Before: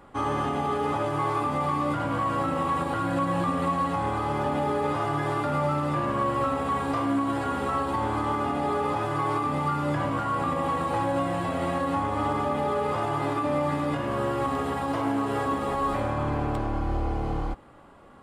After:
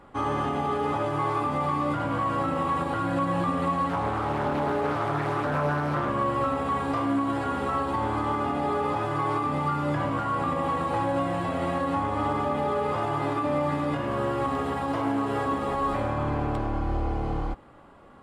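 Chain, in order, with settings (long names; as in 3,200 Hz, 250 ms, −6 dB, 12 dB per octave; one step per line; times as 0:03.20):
high-shelf EQ 7,500 Hz −7 dB
0:03.89–0:06.09: highs frequency-modulated by the lows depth 0.41 ms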